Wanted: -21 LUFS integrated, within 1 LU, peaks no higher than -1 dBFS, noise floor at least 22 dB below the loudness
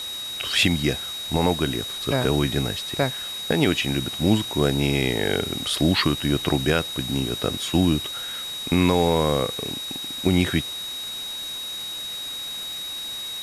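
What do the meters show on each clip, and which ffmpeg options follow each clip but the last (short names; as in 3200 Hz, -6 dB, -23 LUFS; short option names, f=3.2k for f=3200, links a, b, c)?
steady tone 3800 Hz; tone level -30 dBFS; noise floor -32 dBFS; noise floor target -46 dBFS; loudness -23.5 LUFS; peak -6.5 dBFS; loudness target -21.0 LUFS
-> -af "bandreject=f=3.8k:w=30"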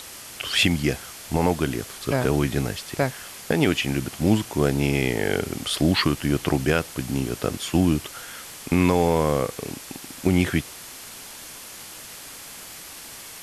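steady tone none; noise floor -41 dBFS; noise floor target -46 dBFS
-> -af "afftdn=nr=6:nf=-41"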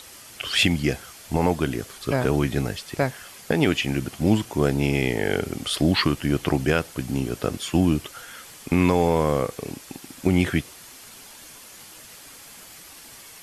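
noise floor -45 dBFS; noise floor target -46 dBFS
-> -af "afftdn=nr=6:nf=-45"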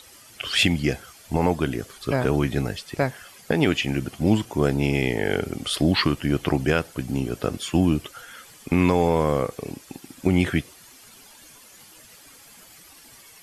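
noise floor -49 dBFS; loudness -23.5 LUFS; peak -6.5 dBFS; loudness target -21.0 LUFS
-> -af "volume=2.5dB"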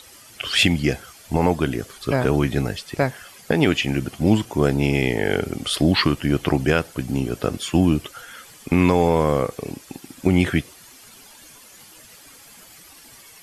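loudness -21.0 LUFS; peak -4.0 dBFS; noise floor -47 dBFS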